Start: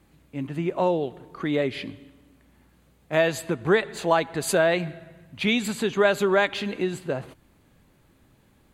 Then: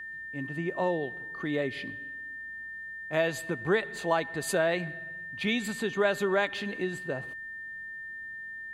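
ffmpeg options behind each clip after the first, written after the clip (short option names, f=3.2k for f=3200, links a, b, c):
-af "aeval=exprs='val(0)+0.0251*sin(2*PI*1800*n/s)':c=same,volume=-6dB"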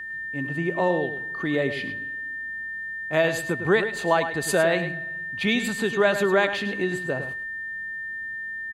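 -filter_complex "[0:a]asplit=2[a][b];[b]adelay=105,volume=-10dB,highshelf=f=4k:g=-2.36[c];[a][c]amix=inputs=2:normalize=0,volume=5.5dB"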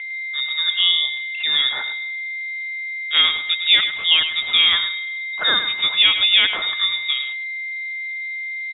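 -af "lowpass=f=3.3k:t=q:w=0.5098,lowpass=f=3.3k:t=q:w=0.6013,lowpass=f=3.3k:t=q:w=0.9,lowpass=f=3.3k:t=q:w=2.563,afreqshift=-3900,volume=5dB"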